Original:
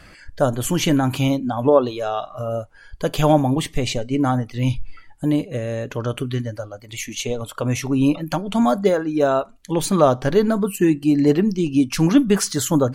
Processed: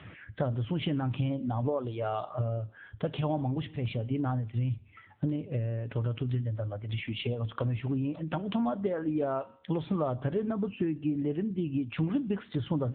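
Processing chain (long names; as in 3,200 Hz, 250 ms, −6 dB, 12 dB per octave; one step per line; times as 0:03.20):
parametric band 110 Hz +12.5 dB 0.44 octaves
downward compressor 6 to 1, threshold −26 dBFS, peak gain reduction 16.5 dB
tuned comb filter 78 Hz, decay 0.76 s, harmonics all, mix 40%
level +2.5 dB
AMR narrowband 7.95 kbit/s 8,000 Hz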